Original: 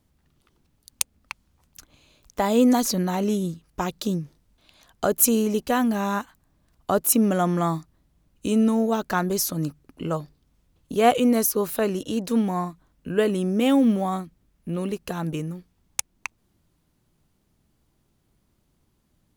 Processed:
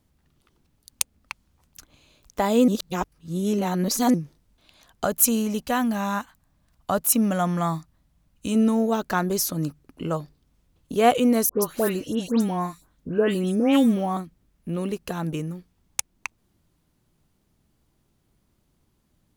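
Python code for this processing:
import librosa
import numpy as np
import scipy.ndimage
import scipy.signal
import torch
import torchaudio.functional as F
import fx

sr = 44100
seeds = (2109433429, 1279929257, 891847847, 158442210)

y = fx.peak_eq(x, sr, hz=380.0, db=-9.0, octaves=0.64, at=(5.04, 8.55))
y = fx.dispersion(y, sr, late='highs', ms=134.0, hz=2200.0, at=(11.49, 14.17))
y = fx.edit(y, sr, fx.reverse_span(start_s=2.68, length_s=1.46), tone=tone)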